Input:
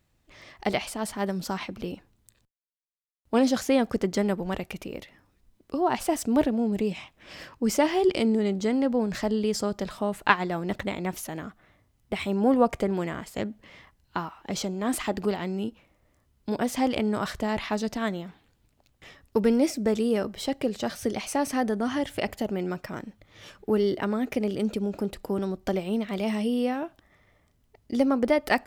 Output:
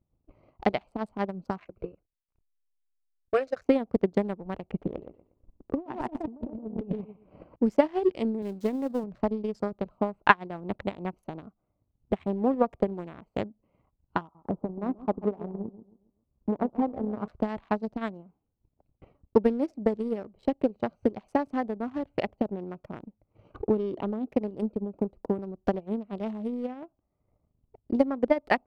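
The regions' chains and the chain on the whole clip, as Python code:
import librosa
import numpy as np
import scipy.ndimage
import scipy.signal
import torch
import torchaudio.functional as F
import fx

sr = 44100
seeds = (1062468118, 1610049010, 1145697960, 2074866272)

y = fx.chain(x, sr, fx.peak_eq(hz=3000.0, db=14.5, octaves=1.3),
    fx.fixed_phaser(hz=890.0, stages=6),
    fx.backlash(play_db=-53.0), at=(1.59, 3.66))
y = fx.chain(y, sr, fx.lowpass(hz=1600.0, slope=6),
    fx.echo_feedback(ms=119, feedback_pct=32, wet_db=-5.0),
    fx.over_compress(threshold_db=-30.0, ratio=-1.0), at=(4.64, 7.56))
y = fx.chain(y, sr, fx.crossing_spikes(level_db=-21.5),
    fx.highpass(hz=89.0, slope=12), at=(8.42, 9.04))
y = fx.chain(y, sr, fx.steep_lowpass(hz=1300.0, slope=36),
    fx.echo_feedback(ms=136, feedback_pct=36, wet_db=-8.5), at=(14.21, 17.28))
y = fx.chain(y, sr, fx.highpass(hz=90.0, slope=6),
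    fx.env_flanger(rest_ms=2.8, full_db=-25.0),
    fx.env_flatten(amount_pct=50), at=(23.54, 24.27))
y = fx.wiener(y, sr, points=25)
y = fx.lowpass(y, sr, hz=1800.0, slope=6)
y = fx.transient(y, sr, attack_db=12, sustain_db=-8)
y = F.gain(torch.from_numpy(y), -7.0).numpy()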